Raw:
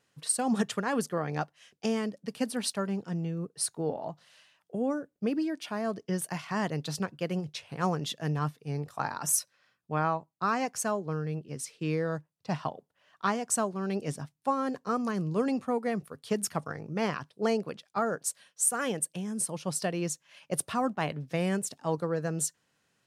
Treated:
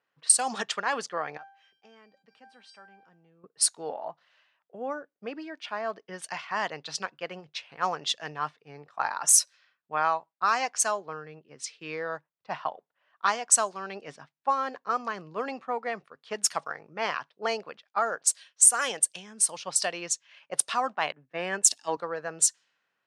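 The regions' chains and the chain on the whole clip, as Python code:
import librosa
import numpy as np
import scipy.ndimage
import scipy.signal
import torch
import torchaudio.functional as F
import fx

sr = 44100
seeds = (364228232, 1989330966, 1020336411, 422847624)

y = fx.chain(x, sr, fx.comb_fb(f0_hz=790.0, decay_s=0.31, harmonics='all', damping=0.0, mix_pct=90),
    fx.env_flatten(amount_pct=50), at=(1.37, 3.44))
y = fx.chain(y, sr, fx.high_shelf(hz=5200.0, db=2.5),
    fx.small_body(hz=(290.0, 1700.0, 2700.0), ring_ms=20, db=6),
    fx.band_widen(depth_pct=100), at=(21.12, 21.97))
y = fx.weighting(y, sr, curve='ITU-R 468')
y = fx.env_lowpass(y, sr, base_hz=1200.0, full_db=-19.0)
y = fx.dynamic_eq(y, sr, hz=780.0, q=0.75, threshold_db=-44.0, ratio=4.0, max_db=7)
y = y * librosa.db_to_amplitude(-1.5)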